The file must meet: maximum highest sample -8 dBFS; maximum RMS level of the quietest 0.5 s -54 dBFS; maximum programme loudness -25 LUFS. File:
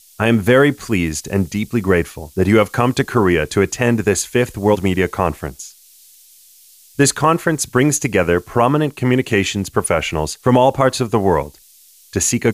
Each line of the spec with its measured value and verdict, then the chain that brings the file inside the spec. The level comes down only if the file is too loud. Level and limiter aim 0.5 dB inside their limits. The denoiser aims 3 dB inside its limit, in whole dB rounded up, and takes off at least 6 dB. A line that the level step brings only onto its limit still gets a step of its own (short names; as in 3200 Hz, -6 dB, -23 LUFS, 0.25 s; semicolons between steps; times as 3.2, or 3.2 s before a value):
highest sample -1.5 dBFS: fail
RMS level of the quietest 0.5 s -48 dBFS: fail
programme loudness -16.5 LUFS: fail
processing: gain -9 dB